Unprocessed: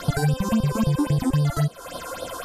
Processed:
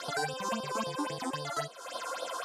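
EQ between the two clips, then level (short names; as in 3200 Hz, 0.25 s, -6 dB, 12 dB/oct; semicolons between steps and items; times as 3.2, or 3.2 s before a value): high shelf 4400 Hz +8.5 dB; dynamic EQ 1000 Hz, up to +4 dB, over -38 dBFS, Q 1; BPF 440–6400 Hz; -6.0 dB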